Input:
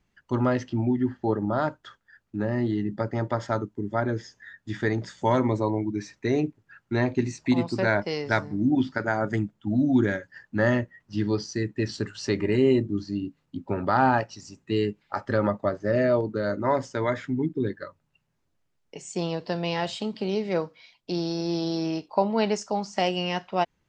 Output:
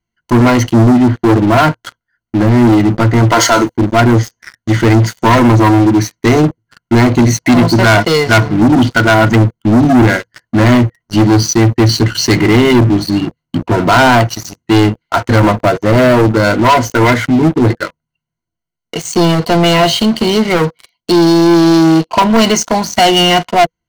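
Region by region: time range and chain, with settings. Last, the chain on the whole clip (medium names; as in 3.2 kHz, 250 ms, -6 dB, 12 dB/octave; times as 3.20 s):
3.32–3.77 s: high-pass 360 Hz + treble shelf 2.1 kHz +11 dB + transient shaper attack -1 dB, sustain +7 dB
whole clip: rippled EQ curve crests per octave 1.9, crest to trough 14 dB; waveshaping leveller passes 5; band-stop 490 Hz, Q 12; trim +2 dB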